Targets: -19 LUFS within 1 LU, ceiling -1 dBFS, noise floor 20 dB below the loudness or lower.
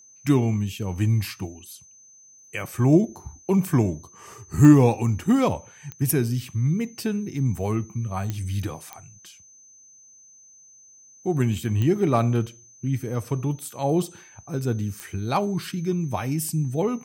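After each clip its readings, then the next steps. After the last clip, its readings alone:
clicks 6; steady tone 6200 Hz; tone level -49 dBFS; loudness -24.0 LUFS; peak -3.0 dBFS; loudness target -19.0 LUFS
-> de-click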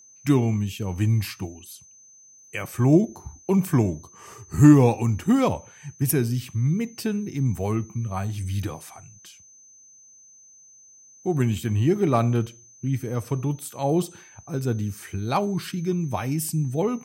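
clicks 0; steady tone 6200 Hz; tone level -49 dBFS
-> notch 6200 Hz, Q 30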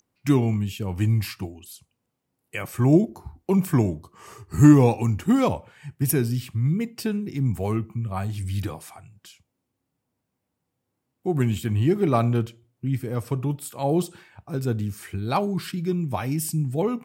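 steady tone none; loudness -24.0 LUFS; peak -3.0 dBFS; loudness target -19.0 LUFS
-> gain +5 dB; limiter -1 dBFS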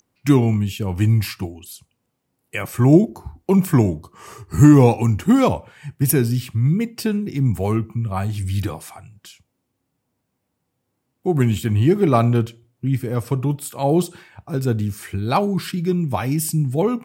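loudness -19.5 LUFS; peak -1.0 dBFS; noise floor -75 dBFS

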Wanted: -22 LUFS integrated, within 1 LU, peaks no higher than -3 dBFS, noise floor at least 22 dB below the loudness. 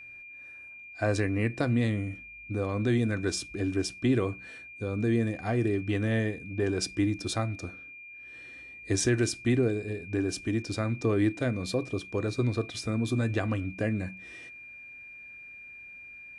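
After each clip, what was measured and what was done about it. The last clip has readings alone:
steady tone 2400 Hz; tone level -44 dBFS; loudness -29.5 LUFS; peak -14.5 dBFS; loudness target -22.0 LUFS
-> notch 2400 Hz, Q 30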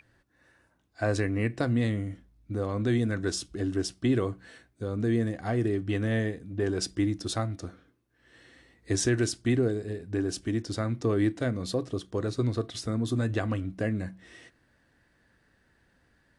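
steady tone none; loudness -29.5 LUFS; peak -14.5 dBFS; loudness target -22.0 LUFS
-> gain +7.5 dB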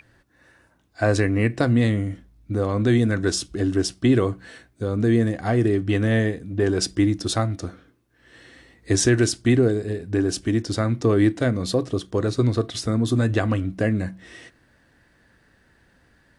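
loudness -22.0 LUFS; peak -7.0 dBFS; noise floor -60 dBFS

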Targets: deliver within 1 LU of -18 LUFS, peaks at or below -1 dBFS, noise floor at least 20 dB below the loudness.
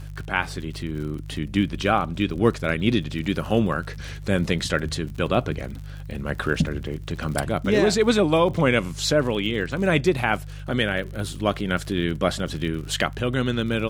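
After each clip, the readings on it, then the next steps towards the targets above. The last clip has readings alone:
ticks 48/s; hum 50 Hz; harmonics up to 150 Hz; hum level -33 dBFS; loudness -24.0 LUFS; peak -4.5 dBFS; loudness target -18.0 LUFS
-> de-click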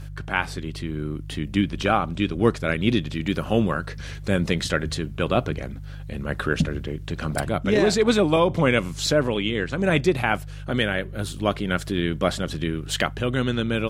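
ticks 0/s; hum 50 Hz; harmonics up to 150 Hz; hum level -33 dBFS
-> de-hum 50 Hz, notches 3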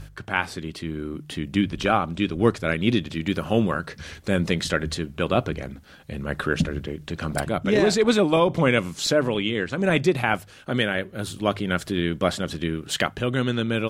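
hum none; loudness -24.0 LUFS; peak -5.0 dBFS; loudness target -18.0 LUFS
-> gain +6 dB; limiter -1 dBFS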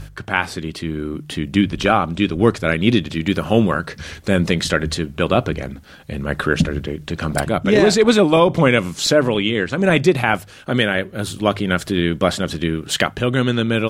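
loudness -18.5 LUFS; peak -1.0 dBFS; noise floor -42 dBFS

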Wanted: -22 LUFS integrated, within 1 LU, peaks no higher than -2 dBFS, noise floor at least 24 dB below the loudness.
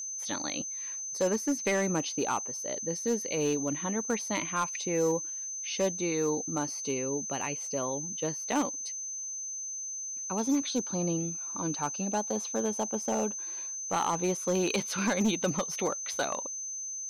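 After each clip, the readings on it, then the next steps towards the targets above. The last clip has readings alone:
clipped 0.7%; flat tops at -21.5 dBFS; steady tone 6200 Hz; tone level -35 dBFS; loudness -31.0 LUFS; peak -21.5 dBFS; loudness target -22.0 LUFS
-> clip repair -21.5 dBFS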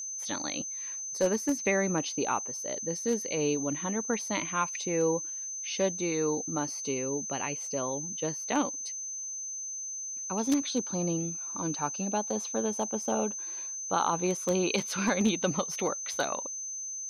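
clipped 0.0%; steady tone 6200 Hz; tone level -35 dBFS
-> notch 6200 Hz, Q 30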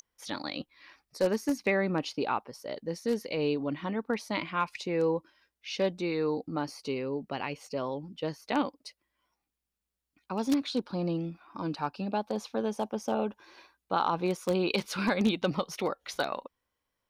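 steady tone none; loudness -32.0 LUFS; peak -12.5 dBFS; loudness target -22.0 LUFS
-> gain +10 dB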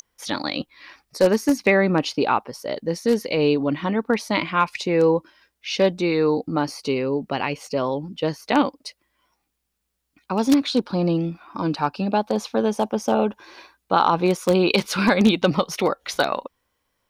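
loudness -22.0 LUFS; peak -2.5 dBFS; noise floor -76 dBFS

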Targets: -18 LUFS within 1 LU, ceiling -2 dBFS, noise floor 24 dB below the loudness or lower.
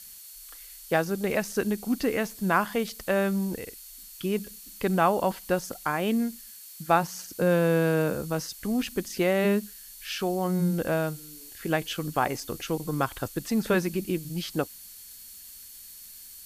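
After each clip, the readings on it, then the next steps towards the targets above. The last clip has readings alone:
steady tone 4400 Hz; tone level -57 dBFS; noise floor -46 dBFS; noise floor target -52 dBFS; loudness -27.5 LUFS; peak -8.5 dBFS; loudness target -18.0 LUFS
-> notch 4400 Hz, Q 30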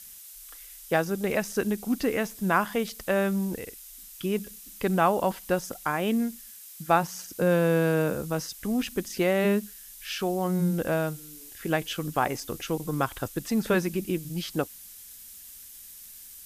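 steady tone none; noise floor -47 dBFS; noise floor target -52 dBFS
-> denoiser 6 dB, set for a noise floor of -47 dBFS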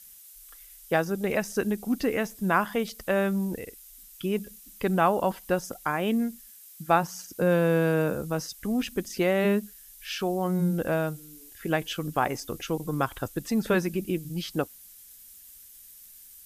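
noise floor -50 dBFS; noise floor target -52 dBFS
-> denoiser 6 dB, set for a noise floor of -50 dBFS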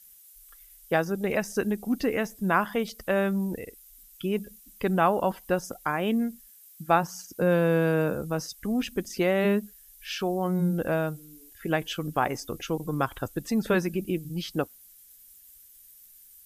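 noise floor -53 dBFS; loudness -28.0 LUFS; peak -9.0 dBFS; loudness target -18.0 LUFS
-> gain +10 dB; limiter -2 dBFS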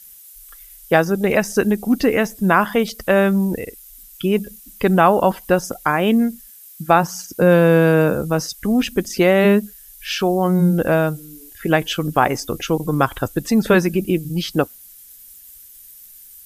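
loudness -18.0 LUFS; peak -2.0 dBFS; noise floor -43 dBFS

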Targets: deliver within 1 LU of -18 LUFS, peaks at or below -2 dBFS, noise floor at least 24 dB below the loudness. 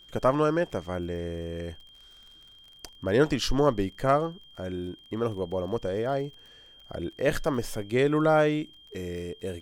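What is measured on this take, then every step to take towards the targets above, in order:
ticks 29/s; steady tone 3200 Hz; tone level -51 dBFS; loudness -28.0 LUFS; peak -10.0 dBFS; loudness target -18.0 LUFS
-> de-click; notch 3200 Hz, Q 30; gain +10 dB; limiter -2 dBFS

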